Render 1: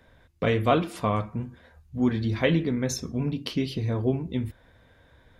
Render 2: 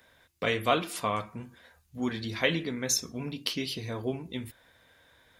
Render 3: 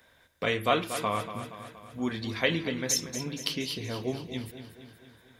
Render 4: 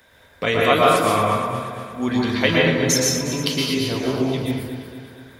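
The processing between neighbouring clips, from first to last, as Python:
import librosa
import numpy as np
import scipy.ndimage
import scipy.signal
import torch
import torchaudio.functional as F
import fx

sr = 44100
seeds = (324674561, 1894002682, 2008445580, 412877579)

y1 = fx.tilt_eq(x, sr, slope=3.0)
y1 = F.gain(torch.from_numpy(y1), -2.0).numpy()
y2 = fx.echo_feedback(y1, sr, ms=236, feedback_pct=56, wet_db=-11)
y3 = fx.rev_plate(y2, sr, seeds[0], rt60_s=1.1, hf_ratio=0.4, predelay_ms=105, drr_db=-3.5)
y3 = F.gain(torch.from_numpy(y3), 6.5).numpy()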